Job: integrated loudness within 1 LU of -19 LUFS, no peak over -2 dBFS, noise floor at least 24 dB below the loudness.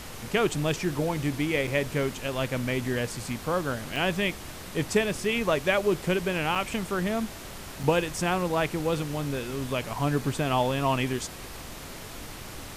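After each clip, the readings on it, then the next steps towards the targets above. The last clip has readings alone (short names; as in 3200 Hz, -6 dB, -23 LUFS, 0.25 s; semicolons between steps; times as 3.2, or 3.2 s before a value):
dropouts 4; longest dropout 4.9 ms; noise floor -41 dBFS; noise floor target -52 dBFS; loudness -28.0 LUFS; peak -8.5 dBFS; loudness target -19.0 LUFS
-> interpolate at 1.67/3.96/6.55/7.83, 4.9 ms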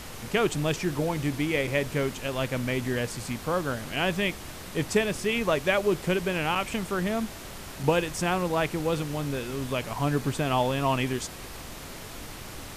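dropouts 0; noise floor -41 dBFS; noise floor target -52 dBFS
-> noise print and reduce 11 dB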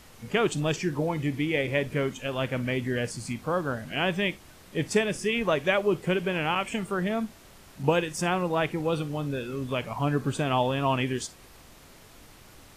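noise floor -52 dBFS; loudness -28.0 LUFS; peak -9.0 dBFS; loudness target -19.0 LUFS
-> gain +9 dB; limiter -2 dBFS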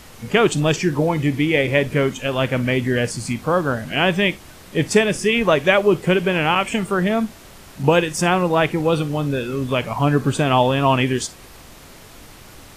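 loudness -19.0 LUFS; peak -2.0 dBFS; noise floor -43 dBFS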